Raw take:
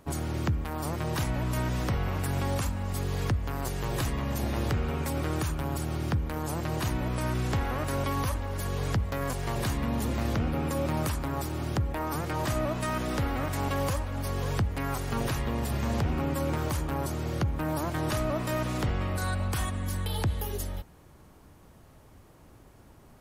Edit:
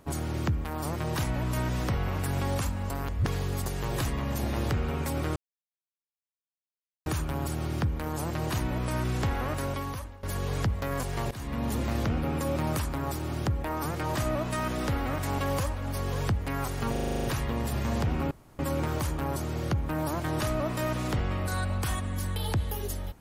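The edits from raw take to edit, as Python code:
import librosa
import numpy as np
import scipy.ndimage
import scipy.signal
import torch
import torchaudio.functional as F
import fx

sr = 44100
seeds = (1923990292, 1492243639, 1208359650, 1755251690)

y = fx.edit(x, sr, fx.reverse_span(start_s=2.9, length_s=0.76),
    fx.insert_silence(at_s=5.36, length_s=1.7),
    fx.fade_out_to(start_s=7.8, length_s=0.73, floor_db=-18.0),
    fx.fade_in_from(start_s=9.61, length_s=0.48, curve='qsin', floor_db=-17.5),
    fx.stutter(start_s=15.22, slice_s=0.04, count=9),
    fx.insert_room_tone(at_s=16.29, length_s=0.28), tone=tone)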